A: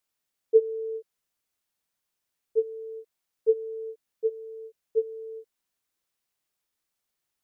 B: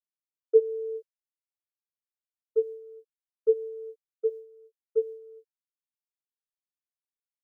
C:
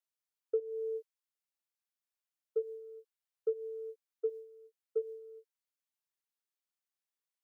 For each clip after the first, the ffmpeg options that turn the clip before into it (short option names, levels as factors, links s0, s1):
-af "agate=range=0.0224:threshold=0.0251:ratio=3:detection=peak"
-af "highpass=f=550:p=1,acompressor=threshold=0.0316:ratio=12,volume=1.12"